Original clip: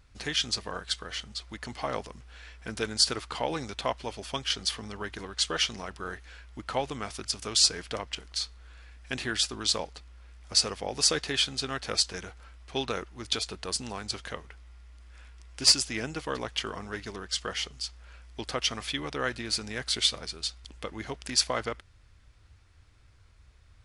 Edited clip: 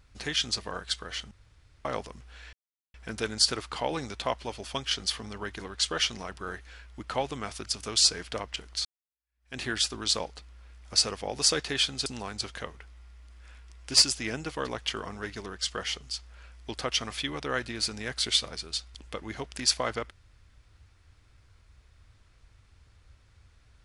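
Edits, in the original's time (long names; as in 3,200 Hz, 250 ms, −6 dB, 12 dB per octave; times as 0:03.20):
0:01.31–0:01.85: fill with room tone
0:02.53: splice in silence 0.41 s
0:08.44–0:09.18: fade in exponential
0:11.65–0:13.76: remove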